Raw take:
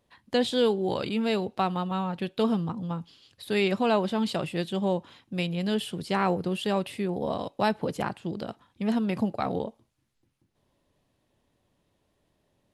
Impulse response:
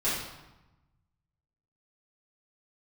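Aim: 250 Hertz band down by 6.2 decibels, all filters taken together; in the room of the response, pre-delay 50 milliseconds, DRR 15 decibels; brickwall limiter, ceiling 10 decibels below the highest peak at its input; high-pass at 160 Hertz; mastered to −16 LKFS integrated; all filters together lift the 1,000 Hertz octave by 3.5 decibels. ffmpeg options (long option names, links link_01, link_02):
-filter_complex "[0:a]highpass=160,equalizer=frequency=250:width_type=o:gain=-7,equalizer=frequency=1000:width_type=o:gain=5,alimiter=limit=-19.5dB:level=0:latency=1,asplit=2[link_01][link_02];[1:a]atrim=start_sample=2205,adelay=50[link_03];[link_02][link_03]afir=irnorm=-1:irlink=0,volume=-25dB[link_04];[link_01][link_04]amix=inputs=2:normalize=0,volume=16.5dB"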